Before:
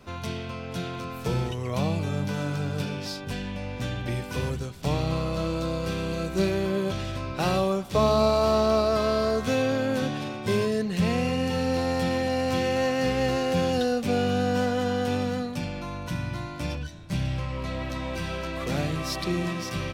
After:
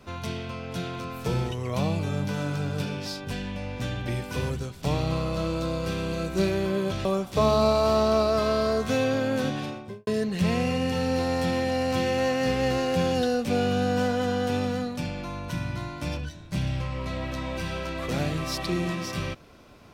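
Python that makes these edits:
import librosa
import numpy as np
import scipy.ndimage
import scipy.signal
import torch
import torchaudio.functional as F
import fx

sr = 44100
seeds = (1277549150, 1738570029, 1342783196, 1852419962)

y = fx.studio_fade_out(x, sr, start_s=10.19, length_s=0.46)
y = fx.edit(y, sr, fx.cut(start_s=7.05, length_s=0.58), tone=tone)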